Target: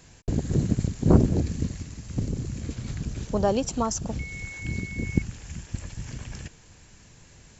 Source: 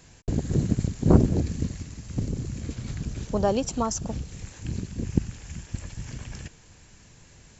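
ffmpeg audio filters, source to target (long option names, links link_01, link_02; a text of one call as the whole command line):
ffmpeg -i in.wav -filter_complex "[0:a]asplit=2[link_01][link_02];[link_02]asoftclip=type=tanh:threshold=-11.5dB,volume=-10dB[link_03];[link_01][link_03]amix=inputs=2:normalize=0,asettb=1/sr,asplit=3[link_04][link_05][link_06];[link_04]atrim=end=4.194[link_07];[link_05]atrim=start=4.19:end=5.22,asetpts=PTS-STARTPTS,afade=type=in:duration=0.004:curve=qsin,afade=type=out:start_time=1.026:duration=0.004:curve=qsin,aeval=exprs='val(0)+0.0178*sin(2*PI*2200*n/s)':channel_layout=same[link_08];[link_06]atrim=start=5.216[link_09];[link_07][link_08]acrossfade=duration=0.004:curve1=hsin:curve2=qsin[link_10];[link_10][link_09]acrossfade=duration=0.004:curve1=qsin:curve2=hsin,volume=-2dB" out.wav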